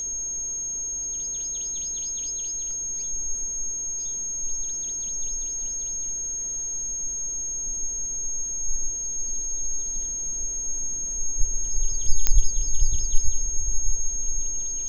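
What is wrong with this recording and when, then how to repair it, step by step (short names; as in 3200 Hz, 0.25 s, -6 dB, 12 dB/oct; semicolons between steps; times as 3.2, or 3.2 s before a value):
tone 6500 Hz -27 dBFS
12.27 pop -4 dBFS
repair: de-click; notch 6500 Hz, Q 30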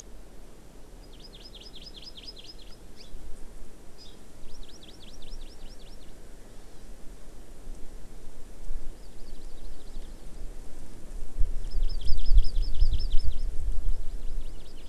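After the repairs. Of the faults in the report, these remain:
none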